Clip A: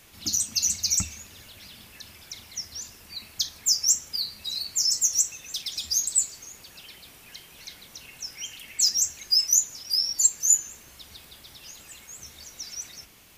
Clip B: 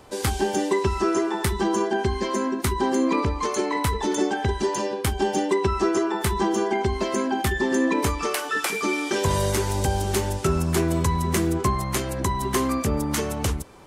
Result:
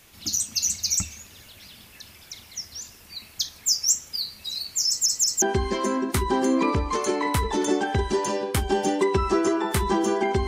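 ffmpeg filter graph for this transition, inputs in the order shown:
ffmpeg -i cue0.wav -i cue1.wav -filter_complex "[0:a]apad=whole_dur=10.47,atrim=end=10.47,asplit=3[link_01][link_02][link_03];[link_01]atrim=end=5.062[link_04];[link_02]atrim=start=4.878:end=5.062[link_05];[link_03]atrim=start=4.878:end=5.062[link_06];[1:a]atrim=start=1.918:end=6.97[link_07];[link_04][link_05]acrossfade=duration=0.004:curve1=hsin:curve2=hsin[link_08];[link_08][link_06]acrossfade=duration=0.004:curve1=hsin:curve2=hsin[link_09];[link_09][link_07]acrossfade=duration=0.004:curve1=hsin:curve2=hsin" out.wav

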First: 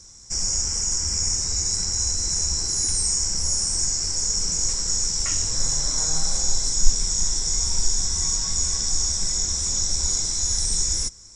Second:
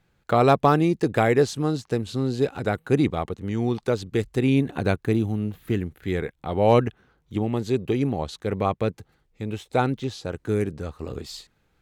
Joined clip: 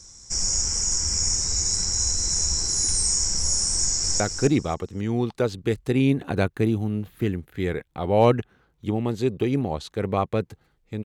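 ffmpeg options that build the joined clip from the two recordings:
ffmpeg -i cue0.wav -i cue1.wav -filter_complex "[0:a]apad=whole_dur=11.04,atrim=end=11.04,atrim=end=4.202[link_01];[1:a]atrim=start=2.678:end=9.52[link_02];[link_01][link_02]acrossfade=duration=0.004:curve1=hsin:curve2=hsin,asplit=2[link_03][link_04];[link_04]afade=type=in:start_time=3.77:duration=0.01,afade=type=out:start_time=4.2:duration=0.01,aecho=0:1:270|540|810:0.446684|0.0893367|0.0178673[link_05];[link_03][link_05]amix=inputs=2:normalize=0" out.wav

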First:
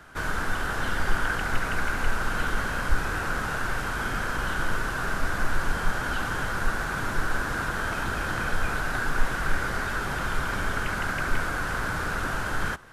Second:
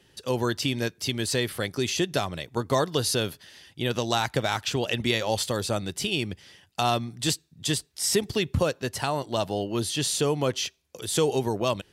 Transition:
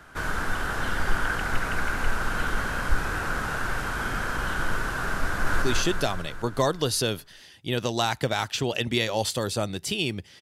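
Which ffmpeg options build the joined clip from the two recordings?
ffmpeg -i cue0.wav -i cue1.wav -filter_complex "[0:a]apad=whole_dur=10.41,atrim=end=10.41,atrim=end=5.622[link_01];[1:a]atrim=start=1.748:end=6.54[link_02];[link_01][link_02]acrossfade=duration=0.004:curve1=hsin:curve2=hsin,asplit=2[link_03][link_04];[link_04]afade=type=in:start_time=5.26:duration=0.01,afade=type=out:start_time=5.62:duration=0.01,aecho=0:1:200|400|600|800|1000|1200|1400|1600|1800:0.841395|0.504837|0.302902|0.181741|0.109045|0.0654269|0.0392561|0.0235537|0.0141322[link_05];[link_03][link_05]amix=inputs=2:normalize=0" out.wav

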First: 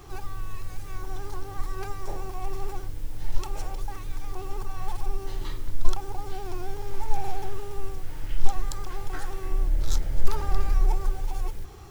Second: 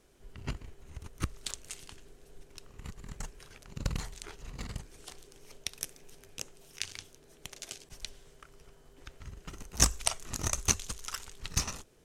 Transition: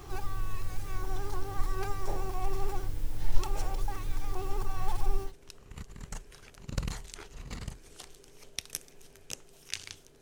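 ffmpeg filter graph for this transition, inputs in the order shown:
ffmpeg -i cue0.wav -i cue1.wav -filter_complex "[0:a]apad=whole_dur=10.21,atrim=end=10.21,atrim=end=5.33,asetpts=PTS-STARTPTS[link_01];[1:a]atrim=start=2.29:end=7.29,asetpts=PTS-STARTPTS[link_02];[link_01][link_02]acrossfade=duration=0.12:curve1=tri:curve2=tri" out.wav

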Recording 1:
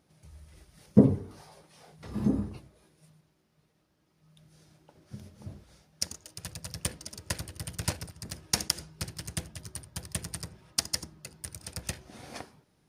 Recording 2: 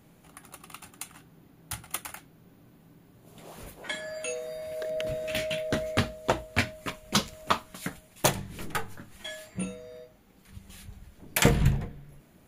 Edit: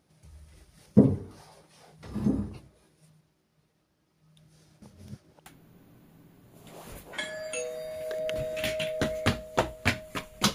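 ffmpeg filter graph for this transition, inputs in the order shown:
ffmpeg -i cue0.wav -i cue1.wav -filter_complex "[0:a]apad=whole_dur=10.54,atrim=end=10.54,asplit=2[link_01][link_02];[link_01]atrim=end=4.822[link_03];[link_02]atrim=start=4.818:end=5.462,asetpts=PTS-STARTPTS,areverse[link_04];[1:a]atrim=start=2.168:end=7.25[link_05];[link_03][link_04]acrossfade=duration=0.004:curve1=hsin:curve2=hsin[link_06];[link_06][link_05]acrossfade=duration=0.004:curve1=hsin:curve2=hsin" out.wav

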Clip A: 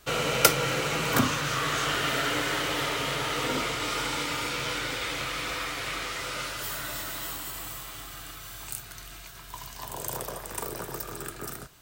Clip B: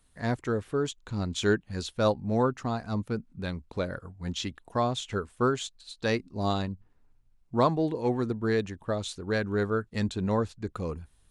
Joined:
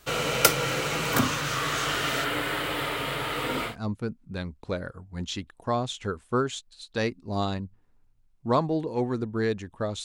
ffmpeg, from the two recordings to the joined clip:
ffmpeg -i cue0.wav -i cue1.wav -filter_complex "[0:a]asettb=1/sr,asplit=3[link_01][link_02][link_03];[link_01]atrim=end=2.244[link_04];[link_02]atrim=start=2.24:end=3.76,asetpts=PTS-STARTPTS,afade=type=in:duration=0.004:curve=qsin,afade=type=out:start_time=1.516:duration=0.004:curve=qsin,equalizer=frequency=6000:width_type=o:width=0.66:gain=-13[link_05];[link_03]atrim=start=3.756[link_06];[link_04][link_05]acrossfade=duration=0.004:curve1=hsin:curve2=qsin[link_07];[link_07][link_06]acrossfade=duration=0.004:curve1=qsin:curve2=hsin,apad=whole_dur=10.04,atrim=end=10.04,atrim=end=3.76,asetpts=PTS-STARTPTS[link_08];[1:a]atrim=start=2.72:end=9.12,asetpts=PTS-STARTPTS[link_09];[link_08][link_09]acrossfade=duration=0.12:curve1=tri:curve2=tri" out.wav

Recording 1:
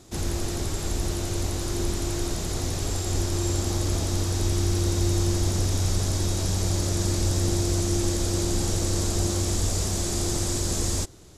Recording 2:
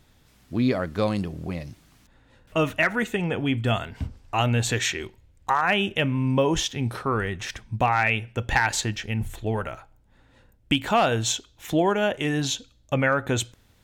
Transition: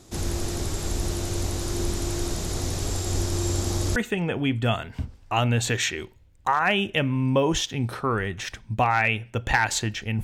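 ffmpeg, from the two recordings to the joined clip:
ffmpeg -i cue0.wav -i cue1.wav -filter_complex "[0:a]apad=whole_dur=10.23,atrim=end=10.23,atrim=end=3.962[link_01];[1:a]atrim=start=2.978:end=9.25[link_02];[link_01][link_02]acrossfade=duration=0.004:curve1=hsin:curve2=hsin" out.wav

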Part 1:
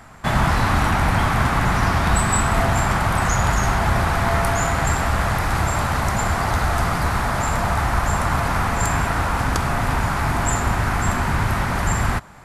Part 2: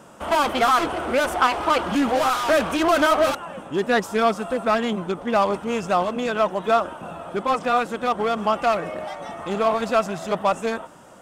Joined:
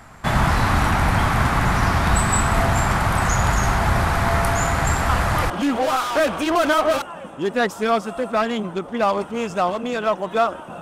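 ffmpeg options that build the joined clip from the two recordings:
ffmpeg -i cue0.wav -i cue1.wav -filter_complex "[1:a]asplit=2[link_01][link_02];[0:a]apad=whole_dur=10.81,atrim=end=10.81,atrim=end=5.502[link_03];[link_02]atrim=start=1.828:end=7.14[link_04];[link_01]atrim=start=1.42:end=1.83,asetpts=PTS-STARTPTS,volume=-7.5dB,afade=type=in:duration=0.004:curve=hsin,afade=type=out:start_time=0.406:duration=0.004:curve=hsin,adelay=224469S[link_05];[link_03][link_04]acrossfade=duration=0.004:curve1=hsin:curve2=hsin[link_06];[link_06][link_05]amix=inputs=2:normalize=0" out.wav

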